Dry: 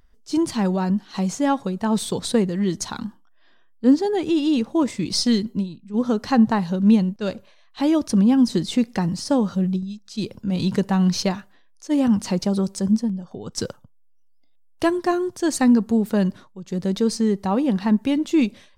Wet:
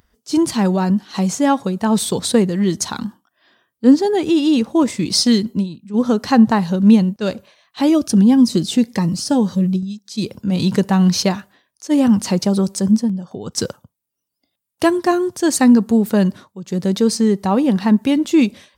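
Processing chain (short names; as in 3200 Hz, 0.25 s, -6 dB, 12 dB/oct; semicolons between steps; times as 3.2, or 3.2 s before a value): HPF 70 Hz; high shelf 9200 Hz +7 dB; 7.89–10.25 cascading phaser rising 1.7 Hz; gain +5 dB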